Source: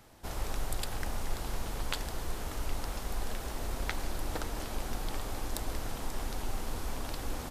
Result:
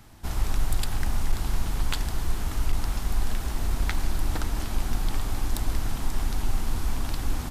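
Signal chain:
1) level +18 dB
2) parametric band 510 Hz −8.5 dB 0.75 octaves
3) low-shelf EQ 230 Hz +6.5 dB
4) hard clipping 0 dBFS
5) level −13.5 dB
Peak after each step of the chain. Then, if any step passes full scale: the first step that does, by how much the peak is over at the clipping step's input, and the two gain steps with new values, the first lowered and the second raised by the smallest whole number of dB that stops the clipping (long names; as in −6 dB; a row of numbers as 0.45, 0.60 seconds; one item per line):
+4.5, +4.5, +5.0, 0.0, −13.5 dBFS
step 1, 5.0 dB
step 1 +13 dB, step 5 −8.5 dB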